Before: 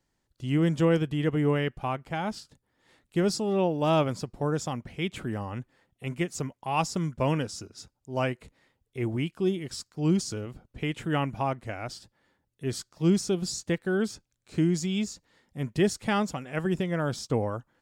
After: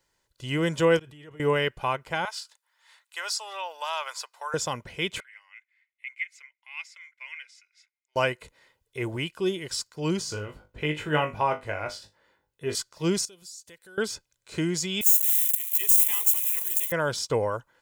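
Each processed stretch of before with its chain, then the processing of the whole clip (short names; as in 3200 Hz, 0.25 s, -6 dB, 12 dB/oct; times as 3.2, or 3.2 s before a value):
0.99–1.4 notch comb 510 Hz + flipped gate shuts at -35 dBFS, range -25 dB + fast leveller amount 100%
2.25–4.54 HPF 850 Hz 24 dB/oct + compressor 2:1, threshold -35 dBFS
5.2–8.16 ladder high-pass 2100 Hz, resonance 90% + tilt -4 dB/oct
10.19–12.75 bell 9100 Hz -8 dB 2.6 oct + flutter echo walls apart 3.4 m, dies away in 0.21 s
13.25–13.98 pre-emphasis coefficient 0.8 + compressor 3:1, threshold -52 dBFS
15.01–16.92 switching spikes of -21 dBFS + differentiator + fixed phaser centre 980 Hz, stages 8
whole clip: low shelf 430 Hz -11.5 dB; comb 2 ms, depth 43%; gain +6.5 dB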